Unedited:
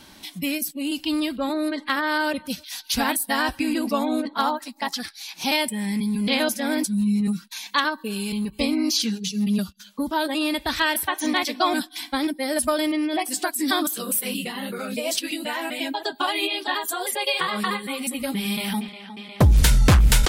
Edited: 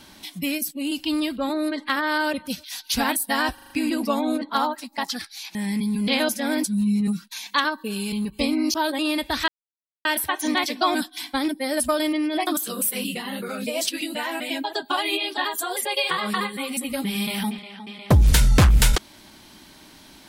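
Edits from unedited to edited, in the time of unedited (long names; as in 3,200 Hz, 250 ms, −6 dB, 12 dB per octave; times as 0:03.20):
0:03.54: stutter 0.04 s, 5 plays
0:05.39–0:05.75: remove
0:08.94–0:10.10: remove
0:10.84: splice in silence 0.57 s
0:13.26–0:13.77: remove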